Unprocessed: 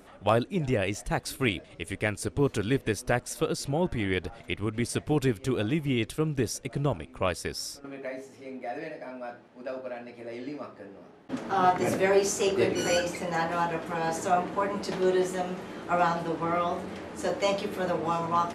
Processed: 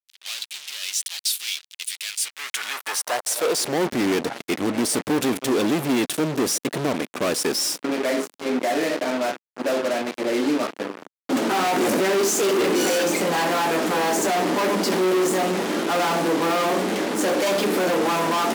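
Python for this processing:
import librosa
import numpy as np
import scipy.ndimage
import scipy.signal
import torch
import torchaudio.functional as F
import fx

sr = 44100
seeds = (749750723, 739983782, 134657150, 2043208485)

y = fx.high_shelf(x, sr, hz=7200.0, db=3.5)
y = fx.fuzz(y, sr, gain_db=45.0, gate_db=-43.0)
y = fx.filter_sweep_highpass(y, sr, from_hz=3500.0, to_hz=260.0, start_s=2.09, end_s=3.87, q=1.5)
y = F.gain(torch.from_numpy(y), -7.5).numpy()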